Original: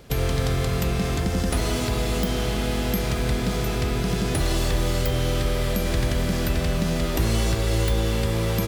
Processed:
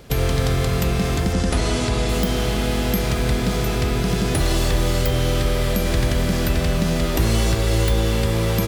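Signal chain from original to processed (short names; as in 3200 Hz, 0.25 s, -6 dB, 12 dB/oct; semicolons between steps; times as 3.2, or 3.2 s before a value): 1.33–2.09 LPF 9800 Hz 24 dB/oct; gain +3.5 dB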